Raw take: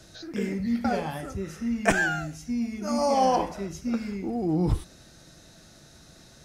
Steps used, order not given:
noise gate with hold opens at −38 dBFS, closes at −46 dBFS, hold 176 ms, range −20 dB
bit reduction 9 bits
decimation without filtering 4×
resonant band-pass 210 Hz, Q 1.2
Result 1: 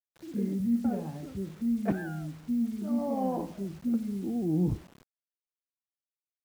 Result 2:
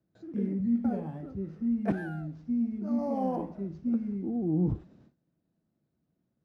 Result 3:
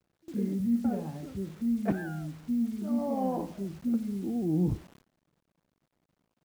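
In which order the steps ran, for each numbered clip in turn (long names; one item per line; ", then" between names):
decimation without filtering, then noise gate with hold, then resonant band-pass, then bit reduction
bit reduction, then noise gate with hold, then decimation without filtering, then resonant band-pass
decimation without filtering, then resonant band-pass, then bit reduction, then noise gate with hold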